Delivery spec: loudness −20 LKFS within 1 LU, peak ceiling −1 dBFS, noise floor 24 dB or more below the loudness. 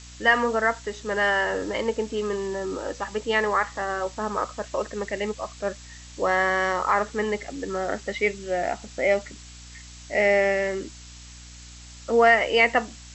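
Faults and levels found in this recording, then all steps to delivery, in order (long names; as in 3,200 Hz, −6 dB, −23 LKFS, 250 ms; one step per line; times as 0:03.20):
mains hum 60 Hz; hum harmonics up to 300 Hz; level of the hum −44 dBFS; background noise floor −44 dBFS; target noise floor −49 dBFS; integrated loudness −24.5 LKFS; sample peak −6.5 dBFS; target loudness −20.0 LKFS
→ hum removal 60 Hz, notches 5
noise reduction from a noise print 6 dB
level +4.5 dB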